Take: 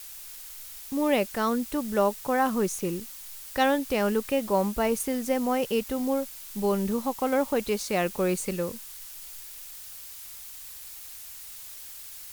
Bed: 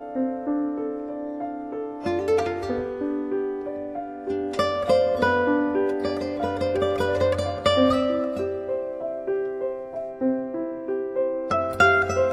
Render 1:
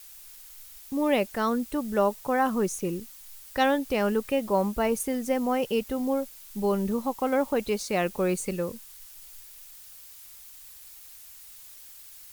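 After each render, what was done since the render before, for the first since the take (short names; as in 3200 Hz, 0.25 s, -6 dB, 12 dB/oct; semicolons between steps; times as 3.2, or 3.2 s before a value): denoiser 6 dB, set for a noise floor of -43 dBFS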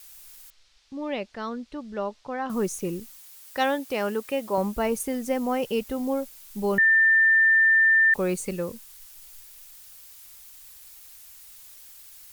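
0.5–2.5 ladder low-pass 5700 Hz, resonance 30%; 3.19–4.58 HPF 300 Hz 6 dB/oct; 6.78–8.14 bleep 1790 Hz -15 dBFS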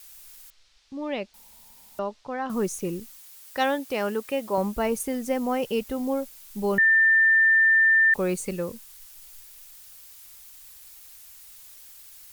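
1.34–1.99 room tone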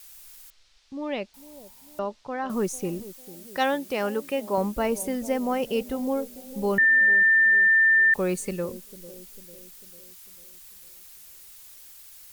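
analogue delay 0.447 s, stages 2048, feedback 53%, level -16 dB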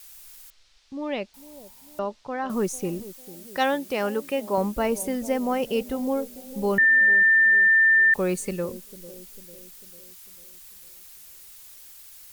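gain +1 dB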